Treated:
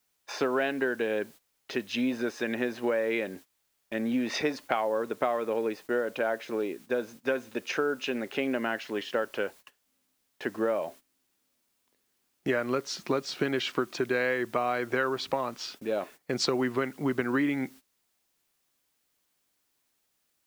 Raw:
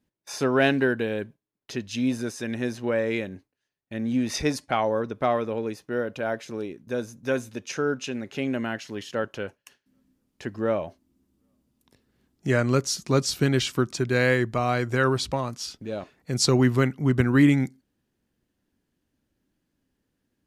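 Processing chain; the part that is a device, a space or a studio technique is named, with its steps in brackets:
baby monitor (band-pass filter 330–3,100 Hz; downward compressor, threshold −30 dBFS, peak gain reduction 13 dB; white noise bed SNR 27 dB; noise gate −52 dBFS, range −17 dB)
level +5.5 dB

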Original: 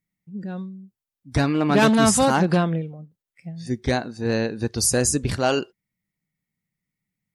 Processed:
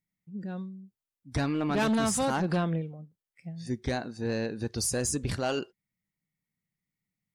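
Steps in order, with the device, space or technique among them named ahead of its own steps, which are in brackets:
soft clipper into limiter (soft clipping −11 dBFS, distortion −20 dB; brickwall limiter −16.5 dBFS, peak gain reduction 4.5 dB)
level −5 dB

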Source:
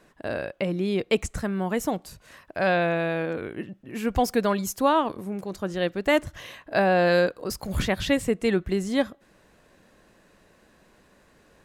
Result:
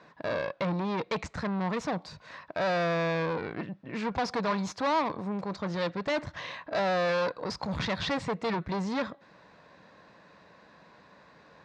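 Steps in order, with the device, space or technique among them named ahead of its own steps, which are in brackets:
guitar amplifier (tube saturation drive 30 dB, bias 0.45; bass and treble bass −3 dB, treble +9 dB; loudspeaker in its box 97–4,000 Hz, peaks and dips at 160 Hz +4 dB, 240 Hz −3 dB, 370 Hz −7 dB, 990 Hz +6 dB, 3,000 Hz −8 dB)
level +5 dB

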